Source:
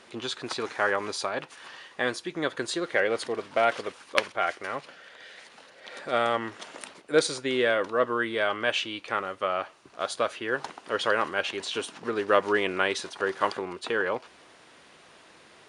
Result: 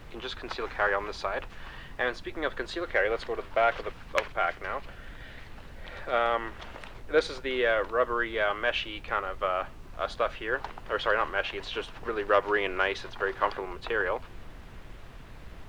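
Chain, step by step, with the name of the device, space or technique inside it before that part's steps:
aircraft cabin announcement (band-pass filter 390–3,100 Hz; soft clipping −8 dBFS, distortion −25 dB; brown noise bed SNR 12 dB)

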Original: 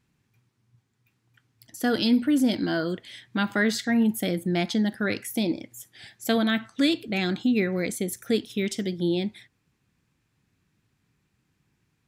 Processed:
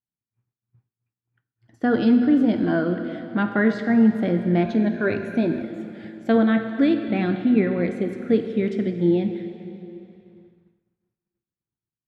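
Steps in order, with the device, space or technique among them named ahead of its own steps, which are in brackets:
high-shelf EQ 11,000 Hz +5.5 dB
dense smooth reverb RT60 3.1 s, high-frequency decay 0.9×, DRR 6.5 dB
0:04.63–0:05.63: EQ curve with evenly spaced ripples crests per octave 1.5, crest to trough 9 dB
hearing-loss simulation (low-pass filter 1,500 Hz 12 dB per octave; downward expander −52 dBFS)
level +4 dB

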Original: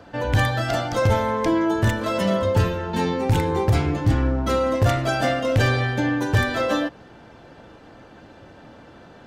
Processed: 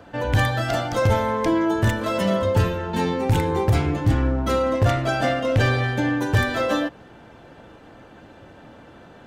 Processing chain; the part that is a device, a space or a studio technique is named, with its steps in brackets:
0:04.62–0:05.84: high-shelf EQ 9,400 Hz −9.5 dB
exciter from parts (in parallel at −6 dB: high-pass filter 2,700 Hz 6 dB per octave + soft clipping −38 dBFS, distortion −7 dB + high-pass filter 4,100 Hz 24 dB per octave)

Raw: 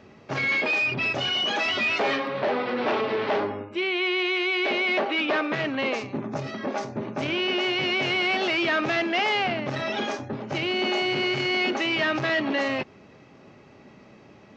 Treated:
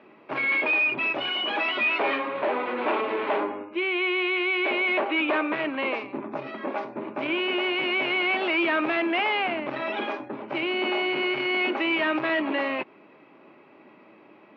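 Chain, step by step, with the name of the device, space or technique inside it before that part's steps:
high-pass filter 97 Hz
kitchen radio (loudspeaker in its box 230–3,500 Hz, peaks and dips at 320 Hz +8 dB, 610 Hz +3 dB, 990 Hz +8 dB, 1,400 Hz +3 dB, 2,400 Hz +6 dB)
level −4 dB

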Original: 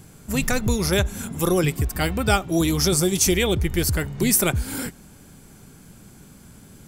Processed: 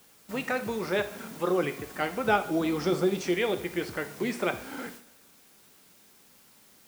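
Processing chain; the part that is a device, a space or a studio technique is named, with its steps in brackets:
wax cylinder (band-pass filter 340–2,200 Hz; tape wow and flutter; white noise bed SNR 18 dB)
noise gate −43 dBFS, range −9 dB
0:02.24–0:03.20: low-shelf EQ 360 Hz +6 dB
coupled-rooms reverb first 0.55 s, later 1.7 s, DRR 8 dB
level −3.5 dB

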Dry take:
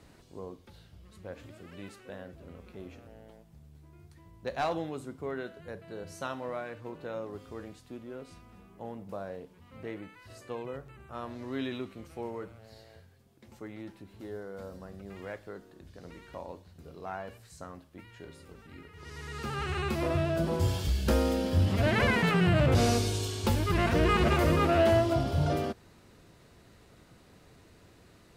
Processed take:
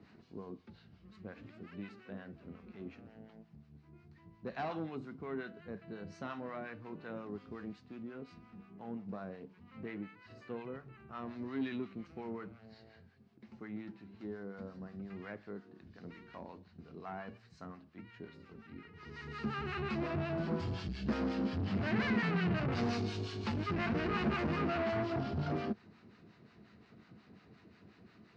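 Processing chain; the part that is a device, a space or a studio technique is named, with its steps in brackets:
guitar amplifier with harmonic tremolo (two-band tremolo in antiphase 5.6 Hz, depth 70%, crossover 760 Hz; soft clipping −30.5 dBFS, distortion −8 dB; loudspeaker in its box 110–4,400 Hz, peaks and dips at 210 Hz +8 dB, 550 Hz −8 dB, 900 Hz −3 dB, 3,400 Hz −7 dB)
level +1 dB

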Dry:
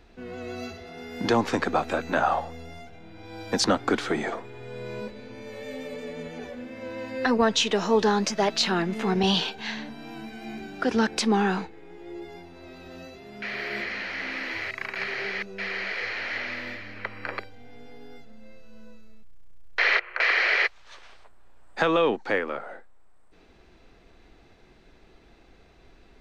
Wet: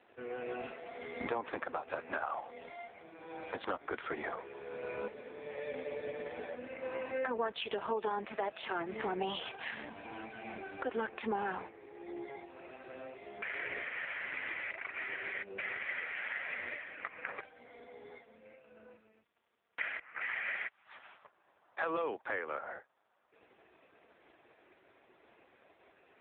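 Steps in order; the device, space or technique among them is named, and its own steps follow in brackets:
voicemail (band-pass filter 440–2,900 Hz; downward compressor 6 to 1, threshold −33 dBFS, peak gain reduction 13.5 dB; level +1.5 dB; AMR narrowband 4.75 kbit/s 8,000 Hz)

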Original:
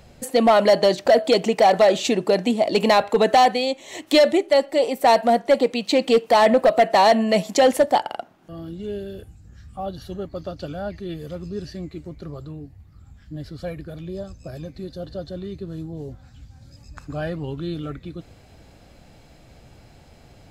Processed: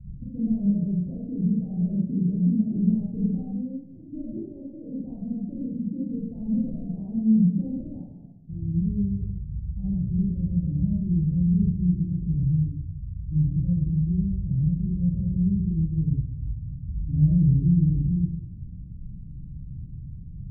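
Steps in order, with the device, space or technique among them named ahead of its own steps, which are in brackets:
club heard from the street (brickwall limiter −16.5 dBFS, peak gain reduction 7 dB; low-pass filter 170 Hz 24 dB per octave; convolution reverb RT60 0.70 s, pre-delay 29 ms, DRR −6.5 dB)
level +7 dB

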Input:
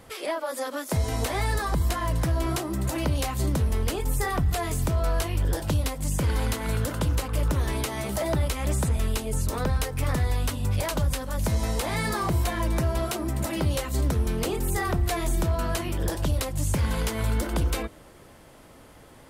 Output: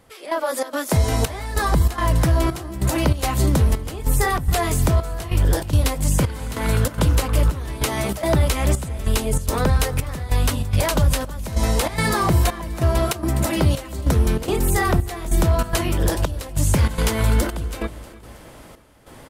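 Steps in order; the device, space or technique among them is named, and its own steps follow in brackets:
trance gate with a delay (gate pattern "...xxx.xxxxx" 144 BPM −12 dB; repeating echo 320 ms, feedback 48%, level −19 dB)
level +7.5 dB

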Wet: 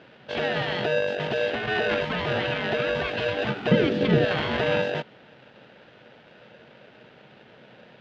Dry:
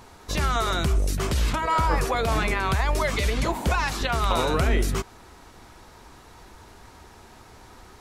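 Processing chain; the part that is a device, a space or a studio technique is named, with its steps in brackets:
ring modulator pedal into a guitar cabinet (ring modulator with a square carrier 540 Hz; loudspeaker in its box 76–3,600 Hz, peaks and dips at 79 Hz −5 dB, 130 Hz +7 dB, 220 Hz +7 dB, 1,100 Hz −6 dB, 3,100 Hz +4 dB)
0:03.71–0:04.25: low shelf with overshoot 550 Hz +11 dB, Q 1.5
level −3 dB

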